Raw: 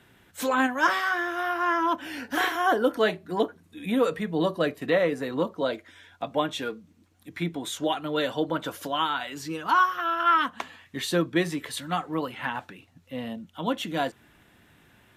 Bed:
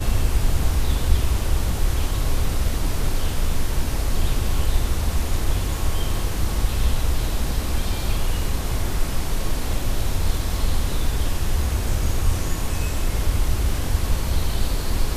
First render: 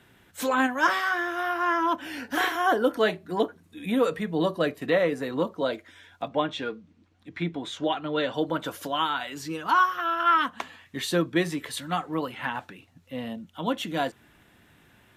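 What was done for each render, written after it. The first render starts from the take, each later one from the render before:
0:06.28–0:08.34: low-pass filter 4,500 Hz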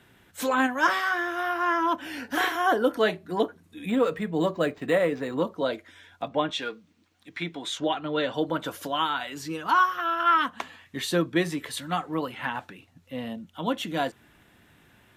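0:03.89–0:05.40: linearly interpolated sample-rate reduction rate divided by 4×
0:06.50–0:07.80: spectral tilt +2.5 dB per octave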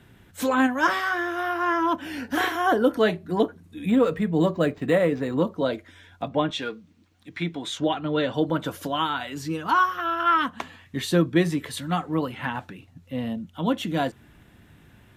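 low-shelf EQ 250 Hz +11 dB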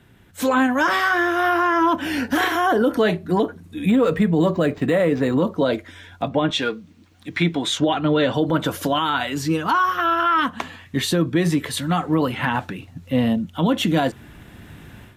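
automatic gain control gain up to 11.5 dB
brickwall limiter −10 dBFS, peak gain reduction 8.5 dB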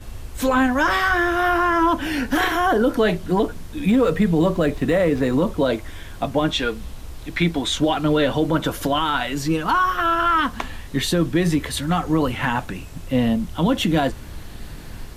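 mix in bed −14.5 dB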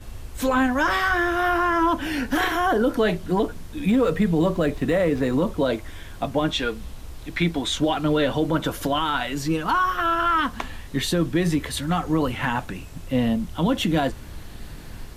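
level −2.5 dB

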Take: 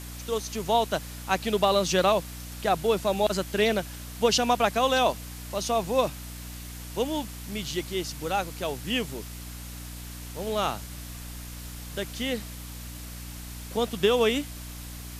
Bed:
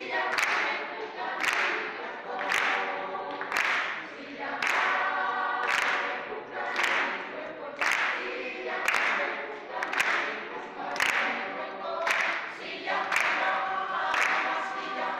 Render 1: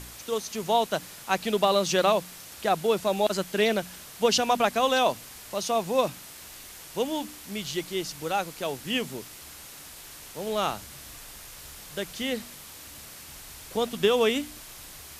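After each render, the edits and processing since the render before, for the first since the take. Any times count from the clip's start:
hum removal 60 Hz, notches 5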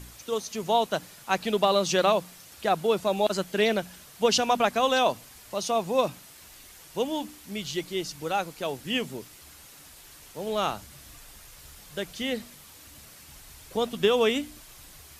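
broadband denoise 6 dB, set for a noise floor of −45 dBFS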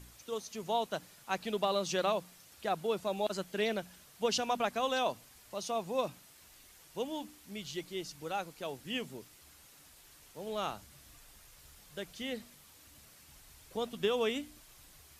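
level −9 dB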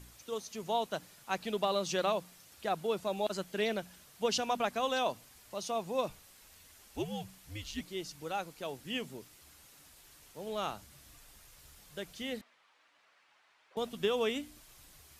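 0:06.09–0:07.81: frequency shifter −110 Hz
0:12.41–0:13.77: band-pass filter 770–2,300 Hz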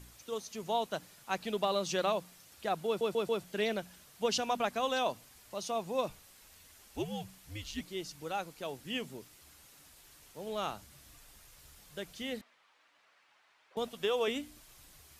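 0:02.87: stutter in place 0.14 s, 4 plays
0:13.88–0:14.28: low shelf with overshoot 390 Hz −6 dB, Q 1.5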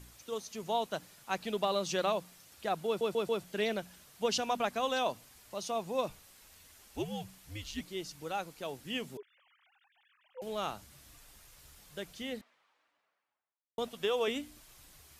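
0:09.17–0:10.42: three sine waves on the formant tracks
0:12.02–0:13.78: fade out and dull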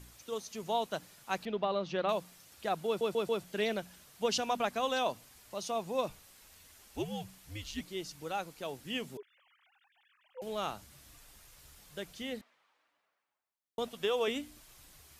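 0:01.45–0:02.09: high-frequency loss of the air 270 metres

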